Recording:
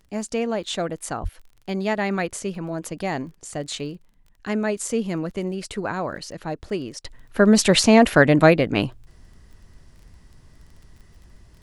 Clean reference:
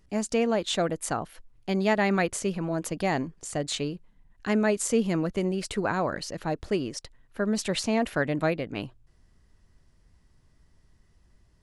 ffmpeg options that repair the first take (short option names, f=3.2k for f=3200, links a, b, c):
-filter_complex "[0:a]adeclick=t=4,asplit=3[a][b][c];[a]afade=t=out:st=1.22:d=0.02[d];[b]highpass=f=140:w=0.5412,highpass=f=140:w=1.3066,afade=t=in:st=1.22:d=0.02,afade=t=out:st=1.34:d=0.02[e];[c]afade=t=in:st=1.34:d=0.02[f];[d][e][f]amix=inputs=3:normalize=0,asetnsamples=n=441:p=0,asendcmd='7.05 volume volume -12dB',volume=0dB"